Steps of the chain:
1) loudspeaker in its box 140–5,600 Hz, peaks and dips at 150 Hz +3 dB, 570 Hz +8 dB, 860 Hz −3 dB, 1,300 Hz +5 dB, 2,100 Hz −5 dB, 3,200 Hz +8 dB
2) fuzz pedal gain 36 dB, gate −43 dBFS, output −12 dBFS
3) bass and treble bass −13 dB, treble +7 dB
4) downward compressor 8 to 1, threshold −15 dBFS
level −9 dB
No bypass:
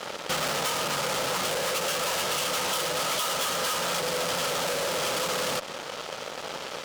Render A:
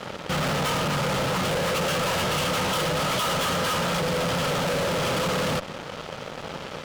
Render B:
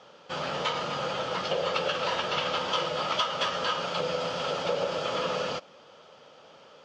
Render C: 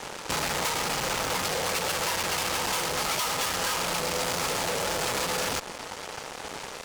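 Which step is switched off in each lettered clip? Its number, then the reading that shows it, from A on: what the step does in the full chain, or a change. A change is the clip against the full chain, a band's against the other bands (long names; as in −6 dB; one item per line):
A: 3, 125 Hz band +11.0 dB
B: 2, distortion level −2 dB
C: 1, change in momentary loudness spread +1 LU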